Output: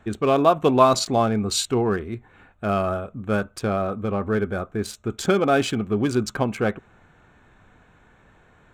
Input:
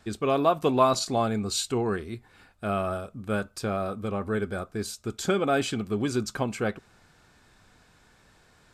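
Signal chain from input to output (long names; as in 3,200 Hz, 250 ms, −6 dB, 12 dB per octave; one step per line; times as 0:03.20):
adaptive Wiener filter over 9 samples
level +5.5 dB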